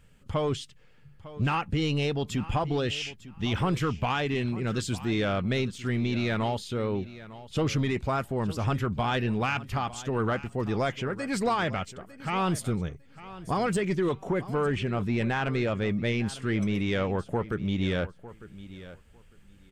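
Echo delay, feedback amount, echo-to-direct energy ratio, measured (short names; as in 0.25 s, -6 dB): 0.902 s, 17%, -16.5 dB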